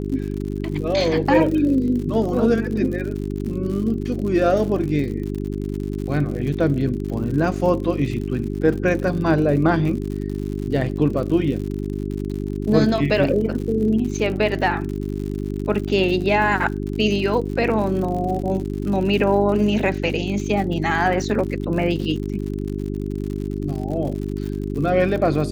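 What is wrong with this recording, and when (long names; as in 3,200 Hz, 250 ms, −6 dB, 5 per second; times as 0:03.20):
surface crackle 83 per second −29 dBFS
mains hum 50 Hz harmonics 8 −26 dBFS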